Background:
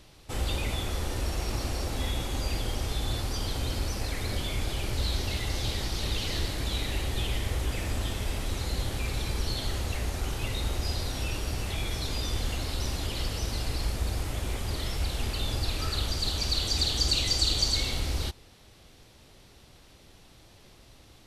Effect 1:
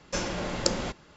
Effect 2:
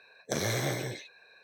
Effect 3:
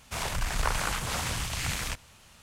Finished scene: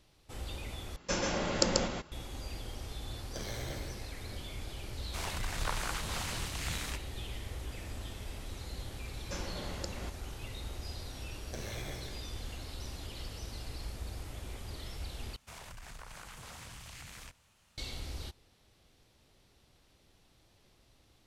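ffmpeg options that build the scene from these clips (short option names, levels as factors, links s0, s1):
-filter_complex "[1:a]asplit=2[s0][s1];[2:a]asplit=2[s2][s3];[3:a]asplit=2[s4][s5];[0:a]volume=0.266[s6];[s0]aecho=1:1:137:0.708[s7];[s1]alimiter=limit=0.335:level=0:latency=1:release=255[s8];[s5]acompressor=threshold=0.0282:ratio=6:attack=3.2:release=140:knee=1:detection=peak[s9];[s6]asplit=3[s10][s11][s12];[s10]atrim=end=0.964[s13];[s7]atrim=end=1.16,asetpts=PTS-STARTPTS,volume=0.75[s14];[s11]atrim=start=2.116:end=15.364[s15];[s9]atrim=end=2.42,asetpts=PTS-STARTPTS,volume=0.224[s16];[s12]atrim=start=17.776[s17];[s2]atrim=end=1.43,asetpts=PTS-STARTPTS,volume=0.251,afade=t=in:d=0.004:c=hsin,afade=t=out:st=1.426:d=0.004:c=hsin,adelay=3040[s18];[s4]atrim=end=2.42,asetpts=PTS-STARTPTS,volume=0.447,afade=t=in:d=0.004:c=hsin,afade=t=out:st=2.416:d=0.004:c=hsin,adelay=5020[s19];[s8]atrim=end=1.16,asetpts=PTS-STARTPTS,volume=0.282,afade=t=in:d=0.004:c=hsin,afade=t=out:st=1.156:d=0.004:c=hsin,adelay=9180[s20];[s3]atrim=end=1.43,asetpts=PTS-STARTPTS,volume=0.211,afade=t=in:d=0.004:c=hsin,afade=t=out:st=1.426:d=0.004:c=hsin,adelay=494802S[s21];[s13][s14]acrossfade=d=0.004:c1=hsin:c2=hsin[s22];[s22][s15]acrossfade=d=0.004:c1=hsin:c2=hsin[s23];[s23][s16]acrossfade=d=0.004:c1=hsin:c2=hsin[s24];[s24][s17]acrossfade=d=0.004:c1=hsin:c2=hsin[s25];[s25][s18][s19][s20][s21]amix=inputs=5:normalize=0"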